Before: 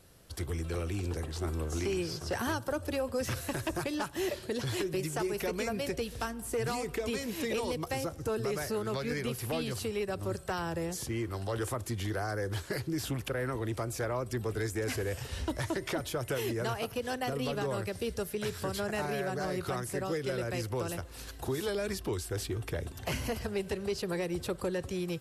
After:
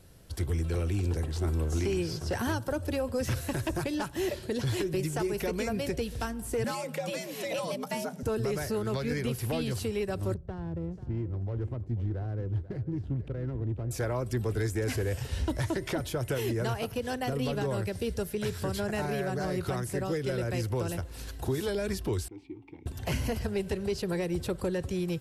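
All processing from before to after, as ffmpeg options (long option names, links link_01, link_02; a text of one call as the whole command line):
ffmpeg -i in.wav -filter_complex "[0:a]asettb=1/sr,asplit=3[link_01][link_02][link_03];[link_01]atrim=end=6.644[link_04];[link_02]atrim=start=6.64:end=8.23,asetpts=PTS-STARTPTS,afade=type=in:duration=0.004:curve=qsin,afade=type=out:start_time=1.586:duration=0.004:curve=qsin,equalizer=frequency=240:width_type=o:width=0.6:gain=-11,afreqshift=100[link_05];[link_03]atrim=start=8.226[link_06];[link_04][link_05]acrossfade=duration=0.004:curve1=hsin:curve2=qsin[link_07];[link_07][link_06]acrossfade=duration=0.004:curve1=qsin:curve2=hsin,asettb=1/sr,asplit=3[link_08][link_09][link_10];[link_08]atrim=end=10.344[link_11];[link_09]atrim=start=10.34:end=13.91,asetpts=PTS-STARTPTS,afade=type=in:duration=0.004:curve=qsin,afade=type=out:start_time=3.566:duration=0.004:curve=qsin,equalizer=frequency=1300:width=0.35:gain=-12,adynamicsmooth=sensitivity=7.5:basefreq=660,aecho=1:1:489:0.178,atrim=end_sample=157437[link_12];[link_10]atrim=start=13.906[link_13];[link_11][link_12]acrossfade=duration=0.004:curve1=hsin:curve2=qsin[link_14];[link_14][link_13]acrossfade=duration=0.004:curve1=qsin:curve2=hsin,asettb=1/sr,asplit=3[link_15][link_16][link_17];[link_15]atrim=end=22.284[link_18];[link_16]atrim=start=22.28:end=22.86,asetpts=PTS-STARTPTS,afade=type=in:duration=0.004:curve=qsin,afade=type=out:start_time=0.576:duration=0.004:curve=qsin,asplit=3[link_19][link_20][link_21];[link_19]bandpass=frequency=300:width_type=q:width=8,volume=0dB[link_22];[link_20]bandpass=frequency=870:width_type=q:width=8,volume=-6dB[link_23];[link_21]bandpass=frequency=2240:width_type=q:width=8,volume=-9dB[link_24];[link_22][link_23][link_24]amix=inputs=3:normalize=0,highshelf=frequency=9500:gain=-11.5[link_25];[link_17]atrim=start=22.856[link_26];[link_18][link_25]acrossfade=duration=0.004:curve1=hsin:curve2=qsin[link_27];[link_27][link_26]acrossfade=duration=0.004:curve1=qsin:curve2=hsin,lowshelf=frequency=260:gain=7,bandreject=frequency=1200:width=14" out.wav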